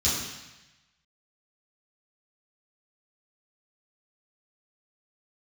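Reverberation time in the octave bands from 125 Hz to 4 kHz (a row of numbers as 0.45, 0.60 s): 1.2, 1.0, 0.95, 1.1, 1.2, 1.1 s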